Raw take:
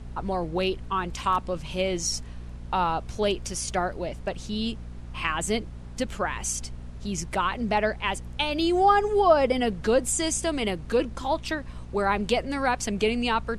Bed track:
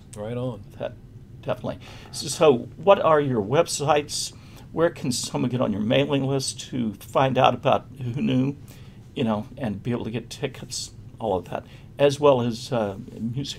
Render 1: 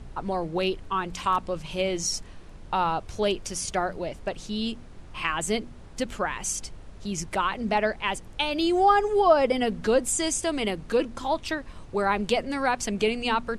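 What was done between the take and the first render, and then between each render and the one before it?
de-hum 60 Hz, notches 4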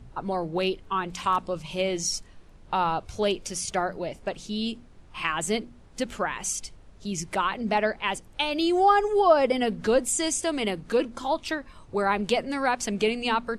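noise print and reduce 7 dB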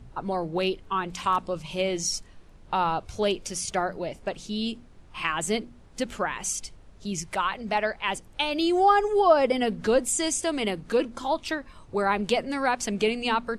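7.19–8.08 s: peaking EQ 280 Hz -8 dB 1.3 oct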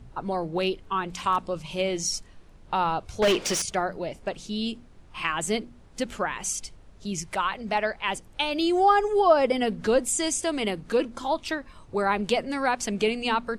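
3.22–3.62 s: overdrive pedal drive 27 dB, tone 3.4 kHz, clips at -14 dBFS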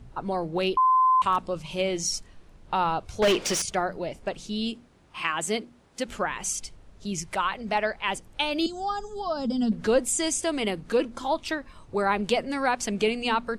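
0.77–1.22 s: bleep 1.03 kHz -16.5 dBFS; 4.70–6.07 s: high-pass 130 Hz -> 270 Hz 6 dB/octave; 8.66–9.72 s: FFT filter 100 Hz 0 dB, 230 Hz +8 dB, 350 Hz -15 dB, 830 Hz -10 dB, 1.5 kHz -10 dB, 2.2 kHz -28 dB, 3.6 kHz -1 dB, 7.5 kHz +2 dB, 11 kHz -28 dB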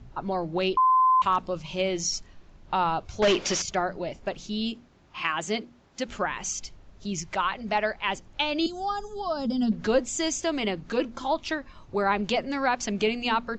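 steep low-pass 7.3 kHz 96 dB/octave; band-stop 470 Hz, Q 12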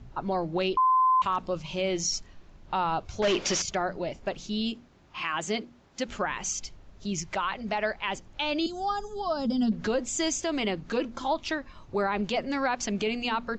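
peak limiter -18.5 dBFS, peak gain reduction 7 dB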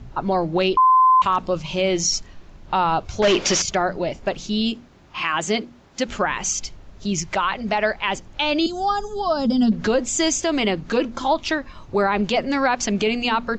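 trim +8 dB

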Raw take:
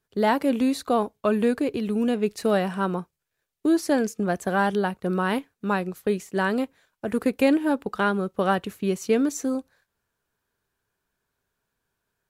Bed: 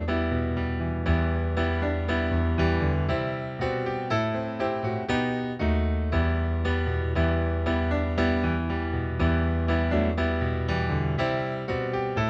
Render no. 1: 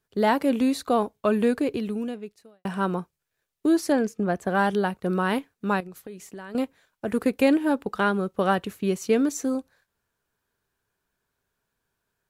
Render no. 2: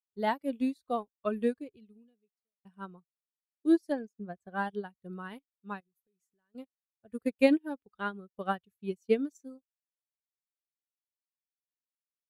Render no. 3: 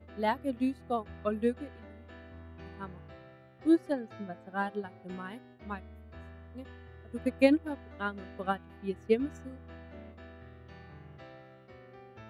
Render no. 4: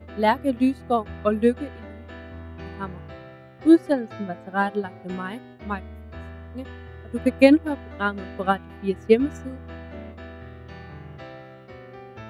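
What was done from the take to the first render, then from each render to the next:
1.75–2.65 s: fade out quadratic; 3.92–4.55 s: treble shelf 3.5 kHz -9 dB; 5.80–6.55 s: compression, threshold -37 dBFS
expander on every frequency bin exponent 1.5; upward expansion 2.5:1, over -37 dBFS
add bed -24.5 dB
trim +10 dB; peak limiter -2 dBFS, peak gain reduction 1.5 dB

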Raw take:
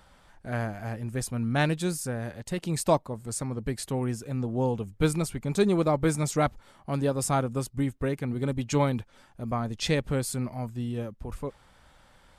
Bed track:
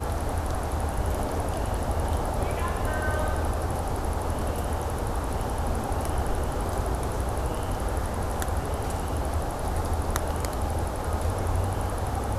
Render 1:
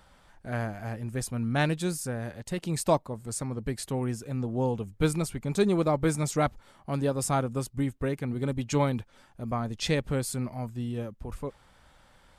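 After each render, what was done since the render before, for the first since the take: trim -1 dB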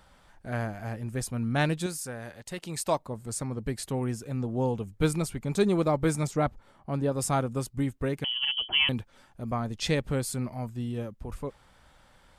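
1.86–3.00 s: bass shelf 470 Hz -8.5 dB; 6.27–7.12 s: treble shelf 2.1 kHz -8.5 dB; 8.24–8.89 s: frequency inversion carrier 3.2 kHz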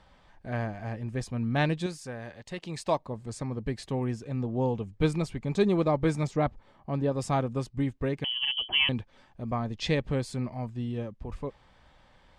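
low-pass 4.7 kHz 12 dB/octave; band-stop 1.4 kHz, Q 7.6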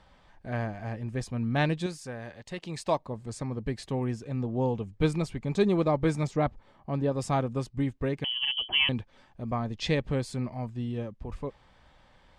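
no audible change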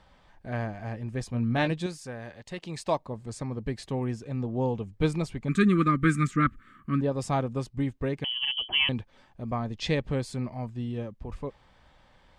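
1.30–1.71 s: doubling 17 ms -7 dB; 5.48–7.01 s: FFT filter 100 Hz 0 dB, 280 Hz +8 dB, 860 Hz -30 dB, 1.2 kHz +14 dB, 2.1 kHz +8 dB, 5.2 kHz -5 dB, 7.6 kHz +6 dB

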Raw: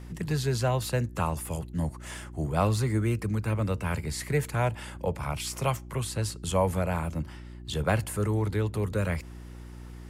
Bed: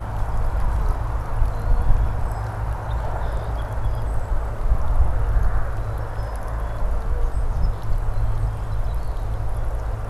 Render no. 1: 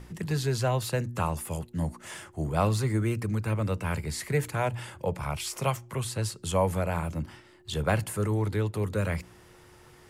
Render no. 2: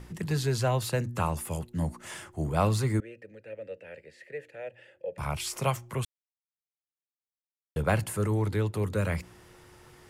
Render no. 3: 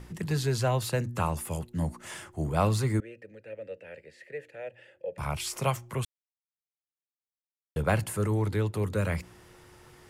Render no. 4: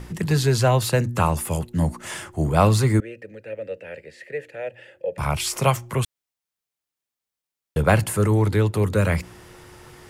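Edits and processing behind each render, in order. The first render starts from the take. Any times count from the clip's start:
de-hum 60 Hz, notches 5
3.00–5.18 s: vowel filter e; 6.05–7.76 s: mute
no audible change
trim +8.5 dB

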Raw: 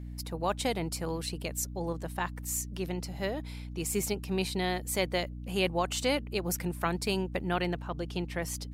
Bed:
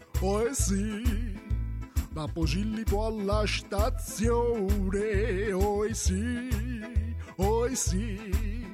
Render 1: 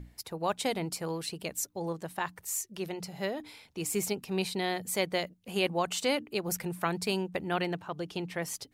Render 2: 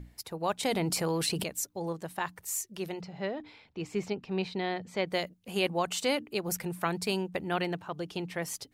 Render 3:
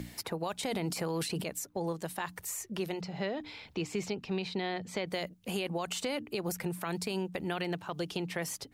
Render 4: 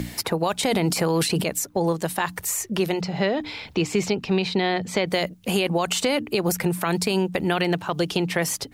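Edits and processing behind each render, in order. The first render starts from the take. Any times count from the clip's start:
hum notches 60/120/180/240/300 Hz
0.63–1.44 s: level flattener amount 70%; 3.01–5.07 s: distance through air 190 m
peak limiter -25 dBFS, peak gain reduction 10 dB; three bands compressed up and down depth 70%
trim +12 dB

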